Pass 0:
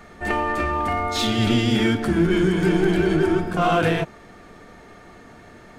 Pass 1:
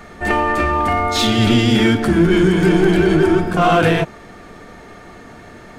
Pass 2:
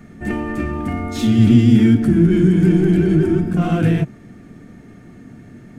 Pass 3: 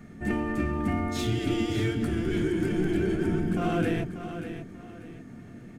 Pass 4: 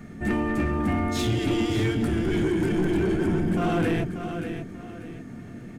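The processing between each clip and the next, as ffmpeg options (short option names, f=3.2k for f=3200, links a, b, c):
-af "acontrast=63"
-af "equalizer=f=125:t=o:w=1:g=11,equalizer=f=250:t=o:w=1:g=10,equalizer=f=500:t=o:w=1:g=-4,equalizer=f=1k:t=o:w=1:g=-9,equalizer=f=4k:t=o:w=1:g=-7,volume=-7dB"
-af "afftfilt=real='re*lt(hypot(re,im),1.41)':imag='im*lt(hypot(re,im),1.41)':win_size=1024:overlap=0.75,aecho=1:1:588|1176|1764:0.316|0.098|0.0304,volume=-5.5dB"
-af "asoftclip=type=tanh:threshold=-22dB,volume=5dB"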